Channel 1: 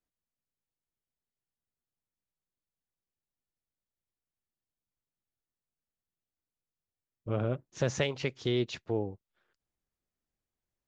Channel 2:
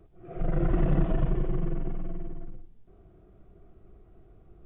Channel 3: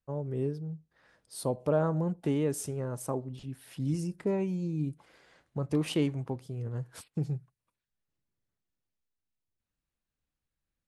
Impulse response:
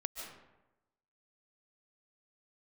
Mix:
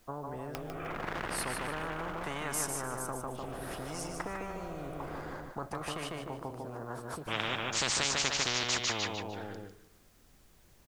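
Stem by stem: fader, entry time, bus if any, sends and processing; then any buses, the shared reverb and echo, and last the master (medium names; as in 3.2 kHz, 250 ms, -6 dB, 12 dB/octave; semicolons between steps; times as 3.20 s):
+0.5 dB, 0.00 s, send -18 dB, echo send -7 dB, none
-13.5 dB, 0.55 s, no send, echo send -7.5 dB, upward compressor, threshold -28 dBFS; hard clipper -29 dBFS, distortion -5 dB
-5.5 dB, 0.00 s, send -21 dB, echo send -5.5 dB, resonant high shelf 1.7 kHz -13 dB, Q 1.5; rotary cabinet horn 0.7 Hz; auto duck -20 dB, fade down 1.80 s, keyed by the first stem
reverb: on, RT60 1.0 s, pre-delay 105 ms
echo: feedback delay 150 ms, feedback 31%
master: spectrum-flattening compressor 10:1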